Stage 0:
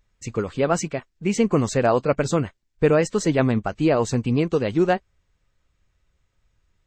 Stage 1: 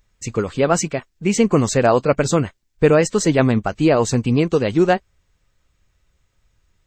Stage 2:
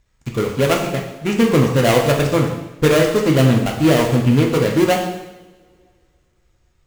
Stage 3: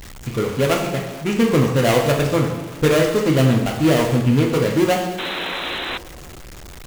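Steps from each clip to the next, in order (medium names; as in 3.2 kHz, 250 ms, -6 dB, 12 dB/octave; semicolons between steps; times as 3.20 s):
treble shelf 5.5 kHz +5.5 dB; trim +4 dB
dead-time distortion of 0.25 ms; reverberation, pre-delay 3 ms, DRR 0 dB; trim -1 dB
jump at every zero crossing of -29 dBFS; painted sound noise, 5.18–5.98 s, 230–4100 Hz -24 dBFS; trim -2.5 dB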